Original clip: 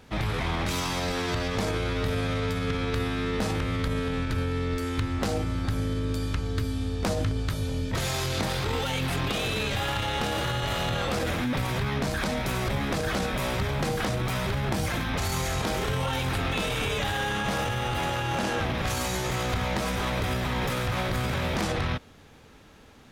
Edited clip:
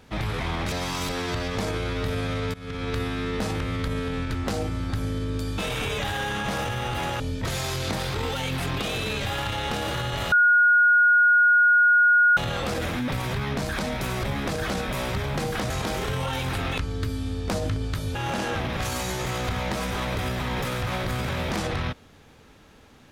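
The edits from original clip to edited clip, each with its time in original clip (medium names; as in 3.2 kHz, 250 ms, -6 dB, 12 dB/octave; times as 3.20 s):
0.72–1.09 s: reverse
2.54–2.90 s: fade in, from -19 dB
4.35–5.10 s: delete
6.33–7.70 s: swap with 16.58–18.20 s
10.82 s: add tone 1.44 kHz -14 dBFS 2.05 s
14.15–15.50 s: delete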